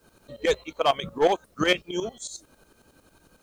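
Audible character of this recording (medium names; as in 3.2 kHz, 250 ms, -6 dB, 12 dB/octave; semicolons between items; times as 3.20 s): tremolo saw up 11 Hz, depth 80%; a quantiser's noise floor 12-bit, dither triangular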